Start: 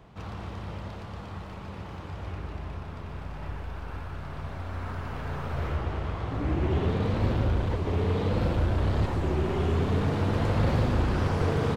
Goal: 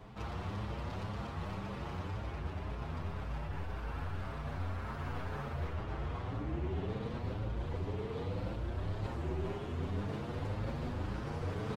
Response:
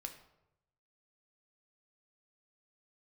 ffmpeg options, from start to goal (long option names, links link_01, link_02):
-filter_complex "[0:a]areverse,acompressor=threshold=-35dB:ratio=10,areverse,asplit=2[link_01][link_02];[link_02]adelay=7.5,afreqshift=1.9[link_03];[link_01][link_03]amix=inputs=2:normalize=1,volume=3.5dB"